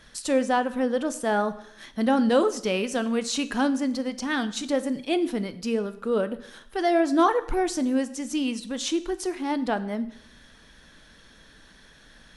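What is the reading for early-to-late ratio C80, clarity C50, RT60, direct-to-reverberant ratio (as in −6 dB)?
18.0 dB, 16.0 dB, 0.70 s, 11.5 dB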